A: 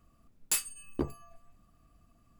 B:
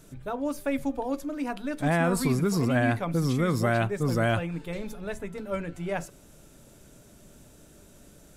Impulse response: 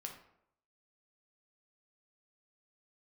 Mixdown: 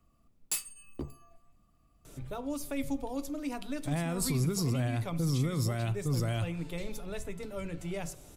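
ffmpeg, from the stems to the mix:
-filter_complex "[0:a]volume=0.596,asplit=2[s0][s1];[s1]volume=0.237[s2];[1:a]equalizer=f=210:w=3:g=-8.5,alimiter=limit=0.0944:level=0:latency=1:release=68,adelay=2050,volume=1,asplit=2[s3][s4];[s4]volume=0.447[s5];[2:a]atrim=start_sample=2205[s6];[s2][s5]amix=inputs=2:normalize=0[s7];[s7][s6]afir=irnorm=-1:irlink=0[s8];[s0][s3][s8]amix=inputs=3:normalize=0,equalizer=f=1600:t=o:w=0.22:g=-6.5,acrossover=split=250|3000[s9][s10][s11];[s10]acompressor=threshold=0.00501:ratio=2[s12];[s9][s12][s11]amix=inputs=3:normalize=0"

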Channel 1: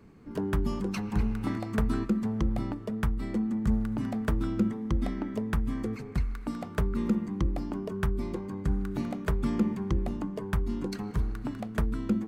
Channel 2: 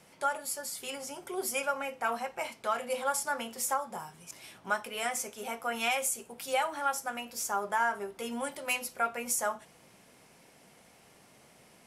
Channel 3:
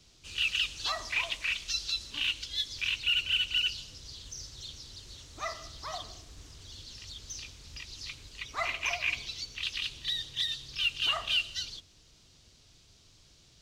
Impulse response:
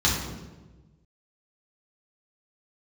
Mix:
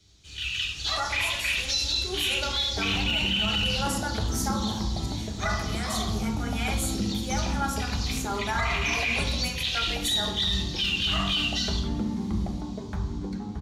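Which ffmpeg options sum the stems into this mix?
-filter_complex "[0:a]equalizer=f=790:w=1.3:g=10,agate=range=0.0224:threshold=0.0316:ratio=3:detection=peak,highshelf=f=8600:g=-12,adelay=2400,volume=0.376,asplit=3[s0][s1][s2];[s0]atrim=end=9.24,asetpts=PTS-STARTPTS,afade=t=out:st=9.236:d=0.004:c=hsin[s3];[s1]atrim=start=9.24:end=9.87,asetpts=PTS-STARTPTS,volume=0[s4];[s2]atrim=start=9.87,asetpts=PTS-STARTPTS,afade=t=in:d=0.004:c=hsin[s5];[s3][s4][s5]concat=n=3:v=0:a=1,asplit=2[s6][s7];[s7]volume=0.15[s8];[1:a]tremolo=f=1.3:d=0.37,adelay=750,volume=0.794,asplit=2[s9][s10];[s10]volume=0.188[s11];[2:a]dynaudnorm=f=350:g=5:m=2.51,volume=0.531,asplit=3[s12][s13][s14];[s13]volume=0.224[s15];[s14]volume=0.668[s16];[3:a]atrim=start_sample=2205[s17];[s8][s11][s15]amix=inputs=3:normalize=0[s18];[s18][s17]afir=irnorm=-1:irlink=0[s19];[s16]aecho=0:1:74:1[s20];[s6][s9][s12][s19][s20]amix=inputs=5:normalize=0,alimiter=limit=0.133:level=0:latency=1:release=14"

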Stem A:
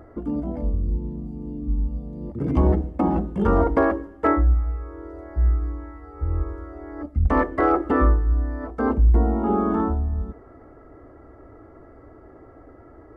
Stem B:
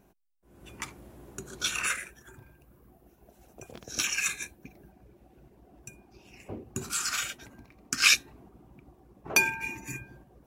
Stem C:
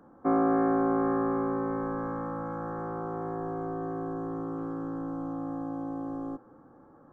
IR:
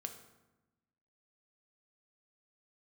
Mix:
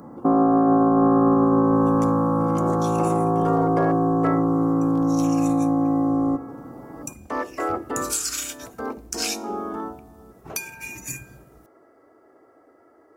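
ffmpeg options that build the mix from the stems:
-filter_complex "[0:a]highpass=360,volume=0.531[s0];[1:a]acompressor=threshold=0.02:ratio=6,adelay=1200,volume=0.794,afade=t=in:st=6.4:d=0.45:silence=0.237137,asplit=2[s1][s2];[s2]volume=0.562[s3];[2:a]equalizer=f=125:t=o:w=1:g=10,equalizer=f=250:t=o:w=1:g=7,equalizer=f=500:t=o:w=1:g=5,equalizer=f=1000:t=o:w=1:g=10,equalizer=f=2000:t=o:w=1:g=-10,volume=1.12,asplit=2[s4][s5];[s5]volume=0.631[s6];[3:a]atrim=start_sample=2205[s7];[s3][s6]amix=inputs=2:normalize=0[s8];[s8][s7]afir=irnorm=-1:irlink=0[s9];[s0][s1][s4][s9]amix=inputs=4:normalize=0,bass=f=250:g=3,treble=f=4000:g=13,alimiter=limit=0.299:level=0:latency=1:release=12"

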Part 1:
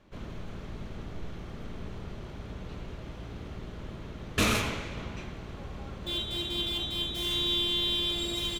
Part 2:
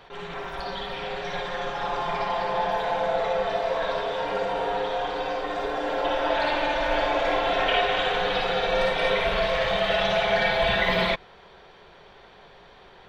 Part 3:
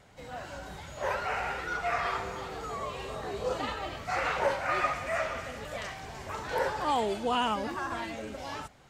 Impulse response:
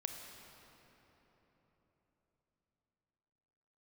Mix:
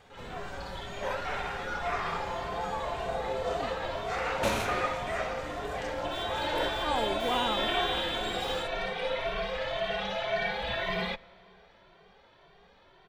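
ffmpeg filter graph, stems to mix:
-filter_complex "[0:a]adelay=50,volume=0.335,asplit=2[s0][s1];[s1]volume=0.473[s2];[1:a]asplit=2[s3][s4];[s4]adelay=2.1,afreqshift=1.9[s5];[s3][s5]amix=inputs=2:normalize=1,volume=0.447,asplit=2[s6][s7];[s7]volume=0.15[s8];[2:a]volume=0.708[s9];[3:a]atrim=start_sample=2205[s10];[s2][s8]amix=inputs=2:normalize=0[s11];[s11][s10]afir=irnorm=-1:irlink=0[s12];[s0][s6][s9][s12]amix=inputs=4:normalize=0"

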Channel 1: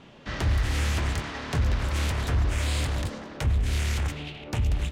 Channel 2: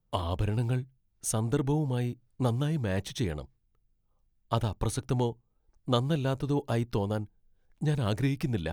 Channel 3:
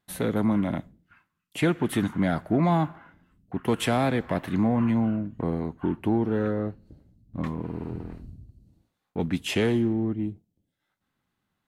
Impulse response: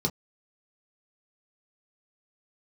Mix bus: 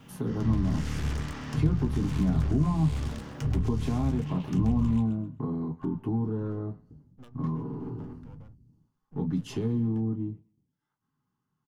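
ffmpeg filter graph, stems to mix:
-filter_complex "[0:a]acrusher=bits=10:mix=0:aa=0.000001,aeval=exprs='(tanh(14.1*val(0)+0.7)-tanh(0.7))/14.1':c=same,volume=1.12,asplit=3[s0][s1][s2];[s1]volume=0.168[s3];[s2]volume=0.376[s4];[1:a]alimiter=limit=0.0891:level=0:latency=1:release=114,adynamicsmooth=sensitivity=7.5:basefreq=580,aeval=exprs='max(val(0),0)':c=same,adelay=1300,volume=0.168,asplit=2[s5][s6];[s6]volume=0.133[s7];[2:a]equalizer=f=1000:w=3:g=10.5,volume=0.335,asplit=3[s8][s9][s10];[s9]volume=0.422[s11];[s10]volume=0.0668[s12];[s0][s8]amix=inputs=2:normalize=0,acompressor=threshold=0.00794:ratio=2,volume=1[s13];[3:a]atrim=start_sample=2205[s14];[s3][s7][s11]amix=inputs=3:normalize=0[s15];[s15][s14]afir=irnorm=-1:irlink=0[s16];[s4][s12]amix=inputs=2:normalize=0,aecho=0:1:130|260|390|520:1|0.23|0.0529|0.0122[s17];[s5][s13][s16][s17]amix=inputs=4:normalize=0,acrossover=split=280[s18][s19];[s19]acompressor=threshold=0.0158:ratio=6[s20];[s18][s20]amix=inputs=2:normalize=0"

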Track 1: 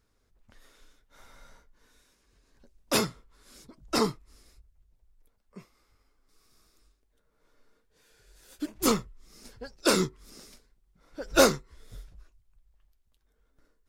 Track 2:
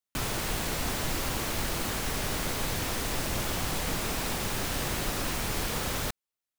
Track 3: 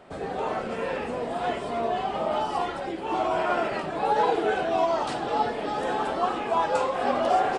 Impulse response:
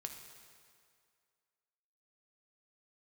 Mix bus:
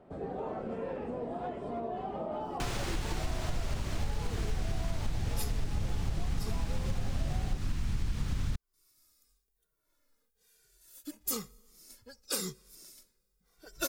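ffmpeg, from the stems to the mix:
-filter_complex "[0:a]aemphasis=mode=production:type=75fm,asplit=2[s0][s1];[s1]adelay=2.1,afreqshift=-1[s2];[s0][s2]amix=inputs=2:normalize=1,adelay=2450,volume=0.355,asplit=2[s3][s4];[s4]volume=0.106[s5];[1:a]acrossover=split=8500[s6][s7];[s7]acompressor=threshold=0.00224:ratio=4:attack=1:release=60[s8];[s6][s8]amix=inputs=2:normalize=0,asubboost=boost=11:cutoff=160,adelay=2450,volume=0.841[s9];[2:a]tiltshelf=f=970:g=9,alimiter=limit=0.15:level=0:latency=1:release=171,volume=0.282[s10];[3:a]atrim=start_sample=2205[s11];[s5][s11]afir=irnorm=-1:irlink=0[s12];[s3][s9][s10][s12]amix=inputs=4:normalize=0,acompressor=threshold=0.0316:ratio=4"

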